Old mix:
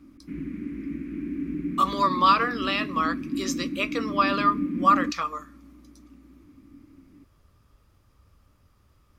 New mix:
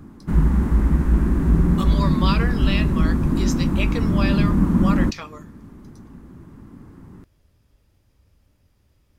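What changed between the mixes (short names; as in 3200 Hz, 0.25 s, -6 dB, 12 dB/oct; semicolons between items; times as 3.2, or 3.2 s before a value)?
speech: add bell 1200 Hz -13.5 dB 0.37 oct; background: remove double band-pass 820 Hz, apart 3 oct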